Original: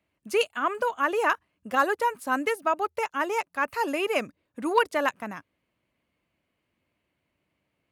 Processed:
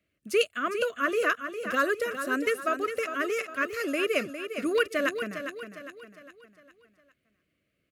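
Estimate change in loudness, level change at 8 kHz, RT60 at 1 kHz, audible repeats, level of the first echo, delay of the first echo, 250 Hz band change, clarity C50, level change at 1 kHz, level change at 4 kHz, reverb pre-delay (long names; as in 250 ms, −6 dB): −1.5 dB, +0.5 dB, no reverb audible, 4, −9.0 dB, 406 ms, +0.5 dB, no reverb audible, −7.0 dB, +0.5 dB, no reverb audible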